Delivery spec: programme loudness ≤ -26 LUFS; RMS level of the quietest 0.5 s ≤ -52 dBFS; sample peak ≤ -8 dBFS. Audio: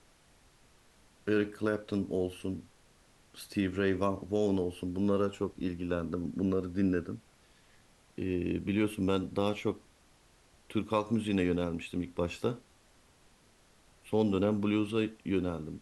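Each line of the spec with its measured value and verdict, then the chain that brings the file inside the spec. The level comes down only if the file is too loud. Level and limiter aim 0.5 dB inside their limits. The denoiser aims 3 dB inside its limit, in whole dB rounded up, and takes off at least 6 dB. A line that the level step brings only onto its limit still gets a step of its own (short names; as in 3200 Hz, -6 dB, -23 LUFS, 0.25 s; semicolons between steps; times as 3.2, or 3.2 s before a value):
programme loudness -32.5 LUFS: OK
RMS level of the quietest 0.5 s -63 dBFS: OK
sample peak -15.5 dBFS: OK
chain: none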